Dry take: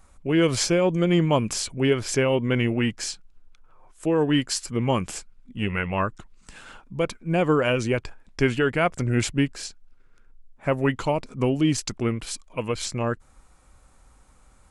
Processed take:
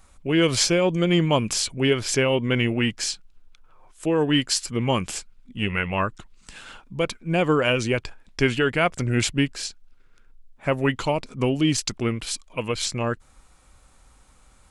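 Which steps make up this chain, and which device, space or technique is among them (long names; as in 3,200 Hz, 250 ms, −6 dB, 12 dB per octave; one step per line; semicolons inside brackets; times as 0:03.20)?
presence and air boost (parametric band 3,500 Hz +5.5 dB 1.5 octaves; high-shelf EQ 9,200 Hz +4 dB)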